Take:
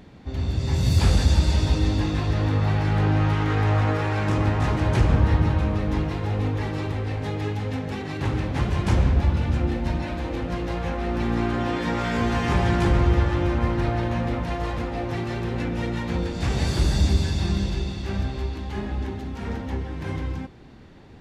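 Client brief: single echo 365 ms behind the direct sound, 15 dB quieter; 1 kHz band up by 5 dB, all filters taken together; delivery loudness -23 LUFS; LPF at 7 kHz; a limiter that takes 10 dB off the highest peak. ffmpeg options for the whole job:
-af "lowpass=7000,equalizer=f=1000:t=o:g=6.5,alimiter=limit=0.141:level=0:latency=1,aecho=1:1:365:0.178,volume=1.5"

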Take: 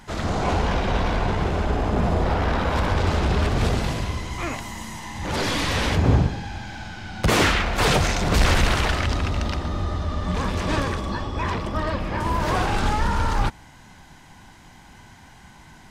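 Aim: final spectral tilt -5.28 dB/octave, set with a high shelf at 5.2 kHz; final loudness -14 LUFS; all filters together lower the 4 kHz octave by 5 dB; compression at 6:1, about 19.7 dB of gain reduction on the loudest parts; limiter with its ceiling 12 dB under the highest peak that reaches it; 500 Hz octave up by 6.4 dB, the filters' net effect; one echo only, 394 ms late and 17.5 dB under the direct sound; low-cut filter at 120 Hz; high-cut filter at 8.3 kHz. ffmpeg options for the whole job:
-af "highpass=120,lowpass=8300,equalizer=f=500:t=o:g=8,equalizer=f=4000:t=o:g=-9,highshelf=f=5200:g=5.5,acompressor=threshold=0.0178:ratio=6,alimiter=level_in=2.37:limit=0.0631:level=0:latency=1,volume=0.422,aecho=1:1:394:0.133,volume=22.4"

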